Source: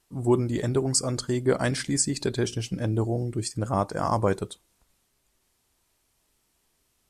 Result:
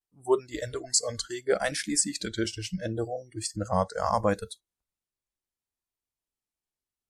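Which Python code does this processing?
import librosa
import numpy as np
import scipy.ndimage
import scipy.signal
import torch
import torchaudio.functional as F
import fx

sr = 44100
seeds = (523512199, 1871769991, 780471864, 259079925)

y = fx.vibrato(x, sr, rate_hz=0.72, depth_cents=92.0)
y = fx.noise_reduce_blind(y, sr, reduce_db=24)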